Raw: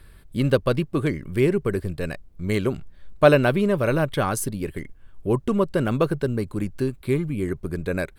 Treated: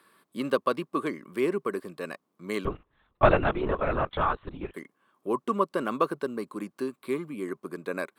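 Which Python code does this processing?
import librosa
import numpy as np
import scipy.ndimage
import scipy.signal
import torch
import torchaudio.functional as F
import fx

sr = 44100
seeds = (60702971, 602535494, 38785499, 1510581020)

y = scipy.signal.sosfilt(scipy.signal.butter(4, 220.0, 'highpass', fs=sr, output='sos'), x)
y = fx.peak_eq(y, sr, hz=1100.0, db=12.5, octaves=0.38)
y = fx.lpc_vocoder(y, sr, seeds[0], excitation='whisper', order=10, at=(2.65, 4.74))
y = y * 10.0 ** (-6.0 / 20.0)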